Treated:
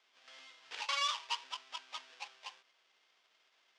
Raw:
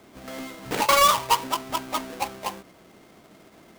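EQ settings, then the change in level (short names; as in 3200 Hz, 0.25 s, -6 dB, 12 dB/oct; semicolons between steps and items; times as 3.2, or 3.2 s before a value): speaker cabinet 160–4300 Hz, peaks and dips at 200 Hz -6 dB, 310 Hz -6 dB, 660 Hz -4 dB, 1300 Hz -3 dB, 2100 Hz -4 dB, 4100 Hz -6 dB; differentiator; low shelf 420 Hz -12 dB; 0.0 dB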